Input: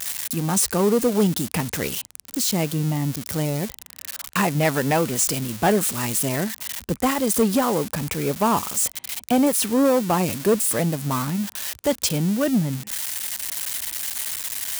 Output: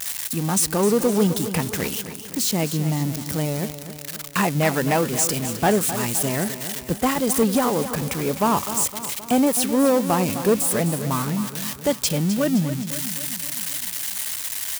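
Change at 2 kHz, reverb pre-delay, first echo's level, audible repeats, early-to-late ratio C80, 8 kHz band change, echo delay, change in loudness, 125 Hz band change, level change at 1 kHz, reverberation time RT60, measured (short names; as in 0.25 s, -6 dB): +0.5 dB, none, -11.5 dB, 5, none, +0.5 dB, 0.259 s, +0.5 dB, +0.5 dB, +0.5 dB, none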